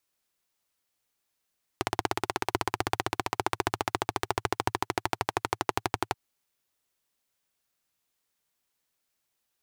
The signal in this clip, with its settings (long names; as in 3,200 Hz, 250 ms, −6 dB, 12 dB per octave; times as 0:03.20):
pulse-train model of a single-cylinder engine, changing speed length 4.33 s, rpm 2,000, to 1,400, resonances 110/370/790 Hz